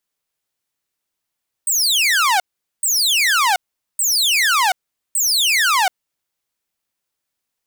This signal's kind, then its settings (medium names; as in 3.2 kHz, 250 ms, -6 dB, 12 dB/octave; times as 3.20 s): burst of laser zaps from 8.7 kHz, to 710 Hz, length 0.73 s saw, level -10.5 dB, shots 4, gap 0.43 s